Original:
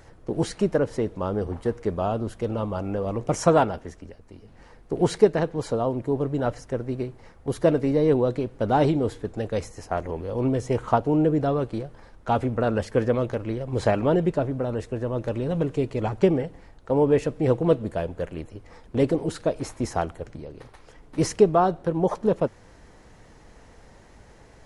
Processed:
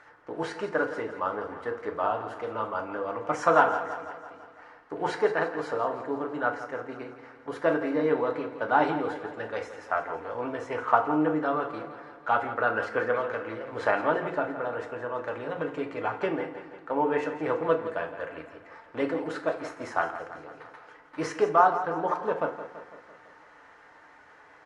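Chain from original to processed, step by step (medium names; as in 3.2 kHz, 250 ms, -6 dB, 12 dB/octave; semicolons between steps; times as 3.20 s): band-pass filter 1.4 kHz, Q 1.9; feedback delay 167 ms, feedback 59%, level -12.5 dB; FDN reverb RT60 0.47 s, low-frequency decay 1.05×, high-frequency decay 0.75×, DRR 3.5 dB; trim +6 dB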